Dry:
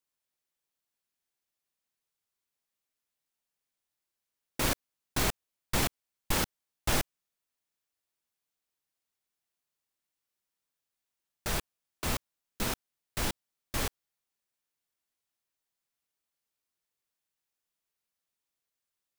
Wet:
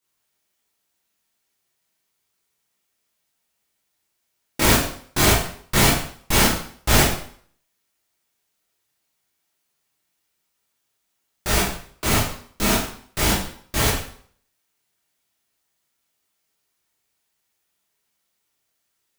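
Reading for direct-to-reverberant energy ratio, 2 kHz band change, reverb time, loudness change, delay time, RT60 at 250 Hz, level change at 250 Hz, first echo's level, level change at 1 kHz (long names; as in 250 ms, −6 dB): −7.5 dB, +13.5 dB, 0.55 s, +13.0 dB, no echo audible, 0.55 s, +14.0 dB, no echo audible, +13.0 dB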